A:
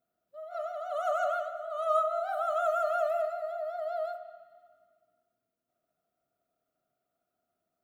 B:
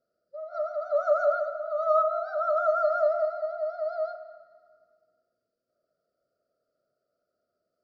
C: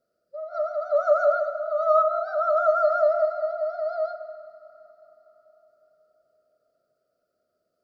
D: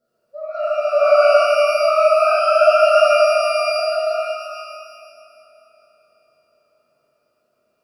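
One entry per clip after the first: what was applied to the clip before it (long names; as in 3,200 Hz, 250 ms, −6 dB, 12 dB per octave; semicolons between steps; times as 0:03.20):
drawn EQ curve 300 Hz 0 dB, 570 Hz +14 dB, 870 Hz −24 dB, 1,300 Hz +5 dB, 1,900 Hz −5 dB, 2,900 Hz −28 dB, 4,700 Hz +9 dB, 8,500 Hz −26 dB
convolution reverb RT60 4.8 s, pre-delay 100 ms, DRR 18.5 dB; level +3.5 dB
reverb with rising layers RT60 1.6 s, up +12 semitones, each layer −8 dB, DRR −7 dB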